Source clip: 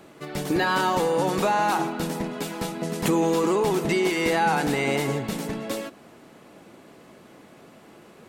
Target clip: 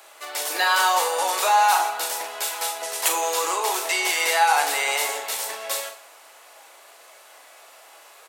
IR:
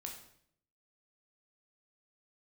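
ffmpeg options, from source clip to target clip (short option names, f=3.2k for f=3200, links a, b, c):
-filter_complex "[0:a]highpass=f=640:w=0.5412,highpass=f=640:w=1.3066,highshelf=f=4.7k:g=10.5,asplit=2[a][b];[b]adelay=41,volume=-7dB[c];[a][c]amix=inputs=2:normalize=0,asplit=2[d][e];[1:a]atrim=start_sample=2205[f];[e][f]afir=irnorm=-1:irlink=0,volume=2.5dB[g];[d][g]amix=inputs=2:normalize=0,volume=-2dB"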